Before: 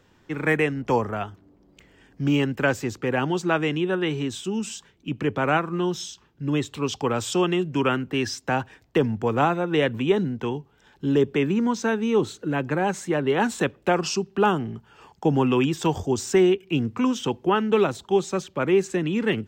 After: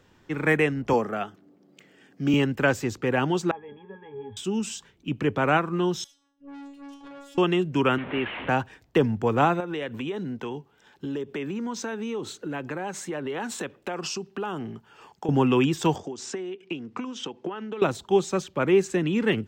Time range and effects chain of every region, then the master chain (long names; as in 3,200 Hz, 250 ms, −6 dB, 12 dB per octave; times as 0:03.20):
0:00.93–0:02.34: high-pass filter 150 Hz 24 dB per octave + notch filter 970 Hz, Q 6.3
0:03.51–0:04.37: converter with a step at zero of −27 dBFS + Chebyshev low-pass with heavy ripple 3,300 Hz, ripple 6 dB + resonances in every octave G#, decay 0.14 s
0:06.04–0:07.38: phases set to zero 281 Hz + tuned comb filter 140 Hz, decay 0.49 s, mix 90% + tube saturation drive 40 dB, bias 0.65
0:07.98–0:08.49: linear delta modulator 16 kbit/s, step −27.5 dBFS + low-shelf EQ 180 Hz −10.5 dB
0:09.60–0:15.29: high-pass filter 220 Hz 6 dB per octave + downward compressor 5 to 1, threshold −28 dBFS
0:15.96–0:17.82: downward compressor 12 to 1, threshold −30 dBFS + transient designer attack +6 dB, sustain −1 dB + band-pass filter 220–6,400 Hz
whole clip: no processing